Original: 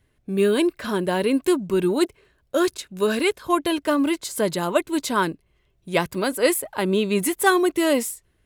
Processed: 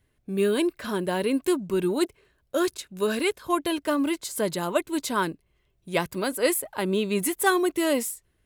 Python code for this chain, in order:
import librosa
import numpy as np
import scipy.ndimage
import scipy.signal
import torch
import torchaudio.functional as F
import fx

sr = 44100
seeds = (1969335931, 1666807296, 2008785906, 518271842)

y = fx.high_shelf(x, sr, hz=9200.0, db=4.0)
y = y * 10.0 ** (-4.0 / 20.0)